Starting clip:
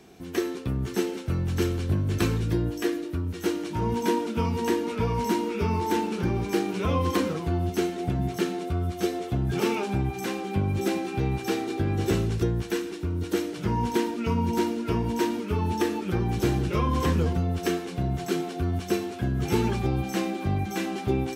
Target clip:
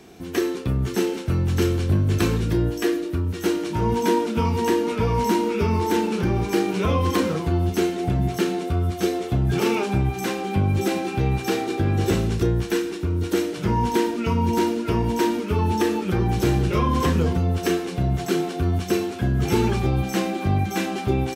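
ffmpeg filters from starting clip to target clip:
-filter_complex "[0:a]asplit=2[a][b];[b]alimiter=limit=-18dB:level=0:latency=1,volume=-2.5dB[c];[a][c]amix=inputs=2:normalize=0,asplit=2[d][e];[e]adelay=32,volume=-11.5dB[f];[d][f]amix=inputs=2:normalize=0"

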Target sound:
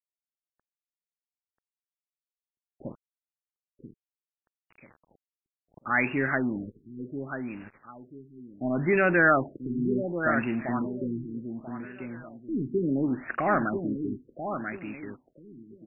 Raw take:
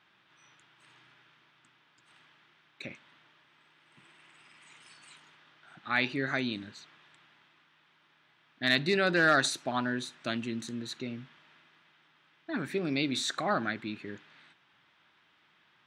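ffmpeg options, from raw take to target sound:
-af "aeval=exprs='val(0)+0.5*0.0141*sgn(val(0))':c=same,acontrast=46,aeval=exprs='val(0)*gte(abs(val(0)),0.0237)':c=same,aecho=1:1:988|1976|2964|3952:0.447|0.13|0.0376|0.0109,afftfilt=real='re*lt(b*sr/1024,420*pow(2900/420,0.5+0.5*sin(2*PI*0.69*pts/sr)))':imag='im*lt(b*sr/1024,420*pow(2900/420,0.5+0.5*sin(2*PI*0.69*pts/sr)))':win_size=1024:overlap=0.75,volume=-2dB"

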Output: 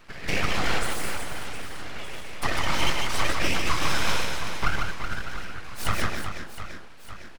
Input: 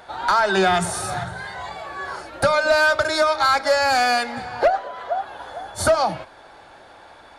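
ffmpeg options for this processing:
-af "afftfilt=real='hypot(re,im)*cos(2*PI*random(0))':imag='hypot(re,im)*sin(2*PI*random(1))':win_size=512:overlap=0.75,aeval=exprs='abs(val(0))':c=same,aecho=1:1:150|375|712.5|1219|1978:0.631|0.398|0.251|0.158|0.1"

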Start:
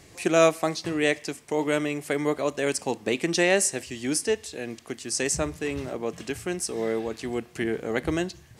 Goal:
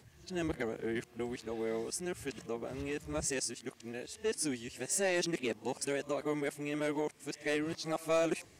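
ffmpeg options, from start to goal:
-af "areverse,asoftclip=type=tanh:threshold=-15dB,volume=-8dB"

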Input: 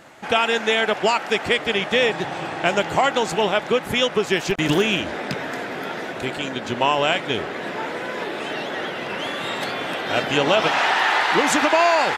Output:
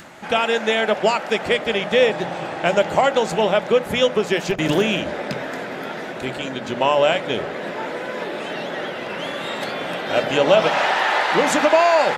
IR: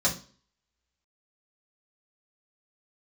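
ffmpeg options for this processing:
-filter_complex "[0:a]adynamicequalizer=threshold=0.0224:dfrequency=560:dqfactor=2:tfrequency=560:tqfactor=2:attack=5:release=100:ratio=0.375:range=3.5:mode=boostabove:tftype=bell,acompressor=mode=upward:threshold=-34dB:ratio=2.5,asplit=2[a][b];[1:a]atrim=start_sample=2205,lowshelf=f=470:g=8.5[c];[b][c]afir=irnorm=-1:irlink=0,volume=-27dB[d];[a][d]amix=inputs=2:normalize=0,volume=-2dB"

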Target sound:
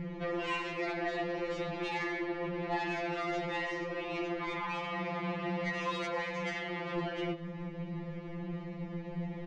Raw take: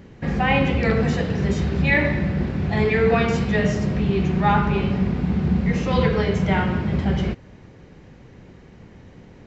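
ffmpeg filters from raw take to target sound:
-filter_complex "[0:a]asettb=1/sr,asplit=3[a][b][c];[a]atrim=end=4.574[d];[b]atrim=start=4.57:end=6.98,asetpts=PTS-STARTPTS,afade=t=in:d=0.004:c=qsin,afade=t=out:st=2.406:d=0.004:c=qsin,highpass=650[e];[c]atrim=start=6.976[f];[d][e]acrossfade=d=0.004:c1=hsin:c2=qsin[g];[g][f]acrossfade=d=0.004:c1=qsin:c2=hsin,afftfilt=real='re*lt(hypot(re,im),0.282)':imag='im*lt(hypot(re,im),0.282)':win_size=1024:overlap=0.75,lowpass=2.7k,equalizer=f=1.5k:t=o:w=0.29:g=-9,acompressor=threshold=-35dB:ratio=20,aeval=exprs='0.0422*sin(PI/2*1.58*val(0)/0.0422)':c=same,asplit=6[h][i][j][k][l][m];[i]adelay=104,afreqshift=-37,volume=-16.5dB[n];[j]adelay=208,afreqshift=-74,volume=-21.4dB[o];[k]adelay=312,afreqshift=-111,volume=-26.3dB[p];[l]adelay=416,afreqshift=-148,volume=-31.1dB[q];[m]adelay=520,afreqshift=-185,volume=-36dB[r];[h][n][o][p][q][r]amix=inputs=6:normalize=0,afftfilt=real='re*2.83*eq(mod(b,8),0)':imag='im*2.83*eq(mod(b,8),0)':win_size=2048:overlap=0.75"

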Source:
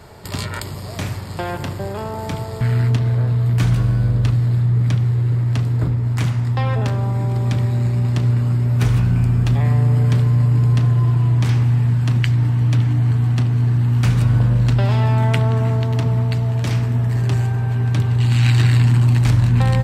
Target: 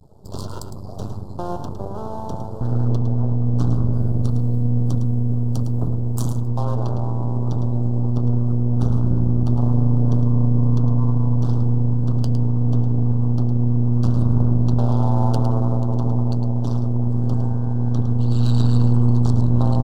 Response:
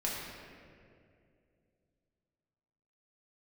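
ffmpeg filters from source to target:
-filter_complex "[0:a]asettb=1/sr,asplit=3[a][b][c];[a]atrim=end=3.934[d];[b]atrim=start=3.93:end=6.47,asetpts=PTS-STARTPTS,afade=t=in:d=0.004:c=qsin,afade=t=out:st=2.536:d=0.004:c=qsin,aemphasis=mode=production:type=50fm[e];[c]atrim=start=6.466[f];[d][e]acrossfade=d=0.004:c1=hsin:c2=qsin[g];[g][f]acrossfade=d=0.004:c1=qsin:c2=hsin,afftdn=nr=17:nf=-34,adynamicequalizer=threshold=0.01:dfrequency=1200:dqfactor=1.2:tfrequency=1200:tqfactor=1.2:attack=5:release=100:ratio=0.375:range=2.5:mode=boostabove:tftype=bell,aeval=exprs='max(val(0),0)':c=same,asuperstop=centerf=2100:order=4:qfactor=0.59,aecho=1:1:108:0.335"

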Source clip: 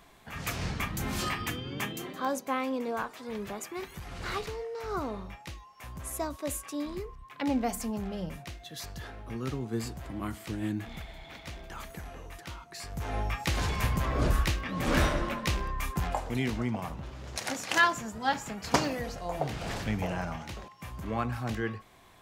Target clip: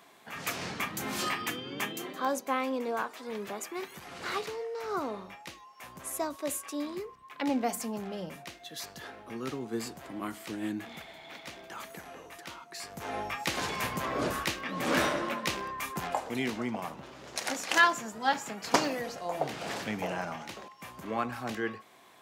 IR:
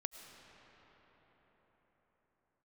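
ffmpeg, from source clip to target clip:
-af "highpass=240,volume=1dB"

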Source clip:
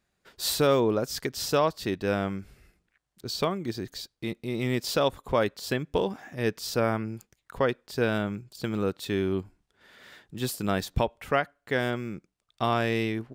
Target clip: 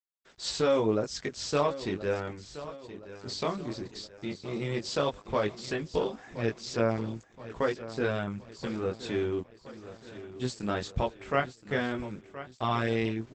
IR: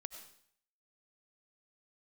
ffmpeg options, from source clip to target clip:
-filter_complex "[0:a]asettb=1/sr,asplit=3[a][b][c];[a]atrim=end=2.084[d];[b]atrim=start=2.08:end=3.26,asetpts=PTS-STARTPTS,afade=t=in:d=0.004:c=qsin,afade=t=out:st=1.176:d=0.004:c=qsin,lowpass=f=3.4k:w=0.5412,lowpass=f=3.4k:w=1.3066[e];[c]atrim=start=3.256[f];[d][e]acrossfade=d=0.004:c1=hsin:c2=qsin[g];[g][f]acrossfade=d=0.004:c1=qsin:c2=hsin,asplit=3[h][i][j];[h]afade=t=out:st=9.4:d=0.02[k];[i]acompressor=threshold=-55dB:ratio=10,afade=t=in:st=9.4:d=0.02,afade=t=out:st=10.39:d=0.02[l];[j]afade=t=in:st=10.39:d=0.02[m];[k][l][m]amix=inputs=3:normalize=0,asettb=1/sr,asplit=3[n][o][p];[n]atrim=end=11.374[q];[o]atrim=start=11.37:end=11.99,asetpts=PTS-STARTPTS,afade=t=in:d=0.004:c=qsin,afade=t=out:st=0.616:d=0.004:c=qsin,lowshelf=f=150:g=9[r];[p]atrim=start=11.986[s];[q][r]acrossfade=d=0.004:c1=hsin:c2=qsin[t];[t][s]acrossfade=d=0.004:c1=qsin:c2=hsin,flanger=delay=17.5:depth=6.6:speed=0.15,acrusher=bits=9:mix=0:aa=0.000001,aecho=1:1:1023|2046|3069|4092|5115:0.2|0.102|0.0519|0.0265|0.0135" -ar 48000 -c:a libopus -b:a 12k

